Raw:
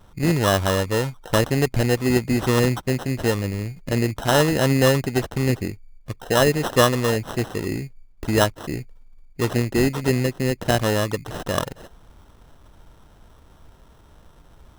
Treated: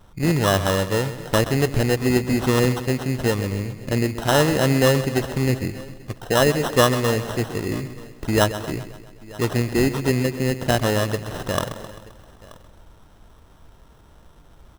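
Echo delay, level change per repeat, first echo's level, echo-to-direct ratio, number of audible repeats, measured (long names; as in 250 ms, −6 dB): 131 ms, repeats not evenly spaced, −13.0 dB, −11.0 dB, 7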